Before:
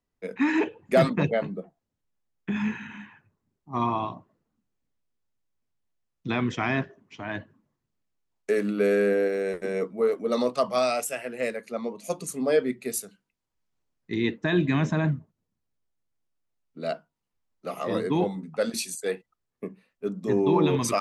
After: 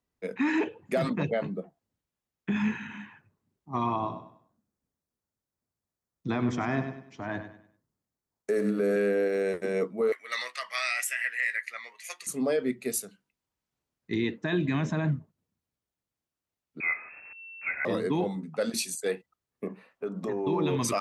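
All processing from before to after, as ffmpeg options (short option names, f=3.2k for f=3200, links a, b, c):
-filter_complex "[0:a]asettb=1/sr,asplit=3[a][b][c];[a]atrim=end=3.964[d];[b]atrim=start=3.96:end=8.96,asetpts=PTS-STARTPTS,afade=t=in:d=0.004:c=qsin,afade=t=out:st=4.996:d=0.004:c=qsin,equalizer=f=2.8k:t=o:w=1:g=-9.5,aecho=1:1:98|196|294|392:0.316|0.104|0.0344|0.0114,atrim=end_sample=220500[e];[c]atrim=start=8.956[f];[d][e]acrossfade=d=0.004:c1=hsin:c2=qsin[g];[g][f]acrossfade=d=0.004:c1=qsin:c2=hsin,asettb=1/sr,asplit=3[h][i][j];[h]atrim=end=10.124[k];[i]atrim=start=10.12:end=12.27,asetpts=PTS-STARTPTS,afade=t=in:d=0.004:c=qsin,afade=t=out:st=2.146:d=0.004:c=qsin,highpass=f=1.9k:t=q:w=9.5,asplit=2[l][m];[m]adelay=14,volume=-13.5dB[n];[l][n]amix=inputs=2:normalize=0,atrim=end_sample=94815[o];[j]atrim=start=12.266[p];[k][o]acrossfade=d=0.004:c1=hsin:c2=qsin[q];[q][p]acrossfade=d=0.004:c1=qsin:c2=hsin,asettb=1/sr,asplit=3[r][s][t];[r]atrim=end=16.804[u];[s]atrim=start=16.8:end=17.85,asetpts=PTS-STARTPTS,afade=t=in:d=0.004:c=qsin,afade=t=out:st=1.046:d=0.004:c=qsin,aeval=exprs='val(0)+0.5*0.0106*sgn(val(0))':c=same,lowpass=f=2.3k:t=q:w=0.5098,lowpass=f=2.3k:t=q:w=0.6013,lowpass=f=2.3k:t=q:w=0.9,lowpass=f=2.3k:t=q:w=2.563,afreqshift=-2700[v];[t]atrim=start=17.846[w];[u][v]acrossfade=d=0.004:c1=hsin:c2=qsin[x];[x][w]acrossfade=d=0.004:c1=qsin:c2=hsin,asettb=1/sr,asplit=3[y][z][aa];[y]atrim=end=19.674[ab];[z]atrim=start=19.67:end=20.47,asetpts=PTS-STARTPTS,afade=t=in:d=0.004:c=qsin,afade=t=out:st=0.796:d=0.004:c=qsin,equalizer=f=920:t=o:w=2.9:g=14.5,acompressor=threshold=-31dB:ratio=4:attack=3.2:release=140:knee=1:detection=peak[ac];[aa]atrim=start=20.466[ad];[ab][ac]acrossfade=d=0.004:c1=hsin:c2=qsin[ae];[ae][ad]acrossfade=d=0.004:c1=qsin:c2=hsin,alimiter=limit=-18.5dB:level=0:latency=1:release=91,highpass=41"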